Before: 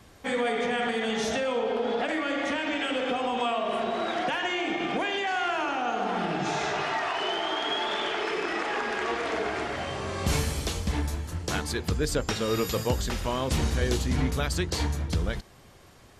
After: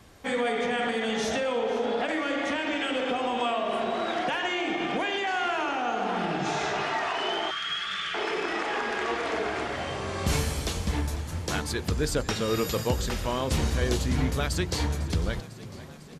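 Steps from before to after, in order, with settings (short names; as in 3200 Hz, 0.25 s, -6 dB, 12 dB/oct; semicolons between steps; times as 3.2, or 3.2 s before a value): frequency-shifting echo 0.5 s, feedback 64%, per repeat +38 Hz, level -17 dB; spectral gain 7.51–8.14, 210–1100 Hz -21 dB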